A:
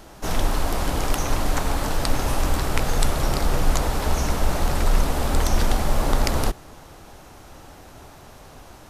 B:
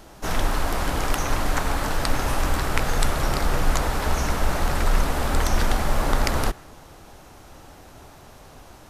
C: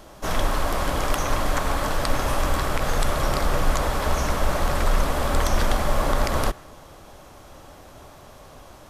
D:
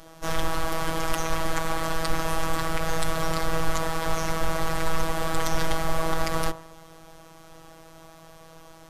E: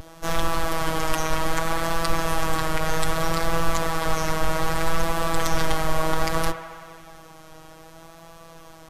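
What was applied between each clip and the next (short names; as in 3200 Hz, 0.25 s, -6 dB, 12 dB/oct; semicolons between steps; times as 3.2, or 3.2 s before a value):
dynamic EQ 1600 Hz, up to +5 dB, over -43 dBFS, Q 0.98; gain -1.5 dB
small resonant body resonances 580/1100/3300 Hz, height 6 dB, ringing for 25 ms; maximiser +6.5 dB; gain -7 dB
de-hum 51.08 Hz, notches 27; robotiser 162 Hz
vibrato 0.63 Hz 33 cents; on a send: band-limited delay 90 ms, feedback 76%, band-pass 1400 Hz, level -12 dB; on the sum: gain +2.5 dB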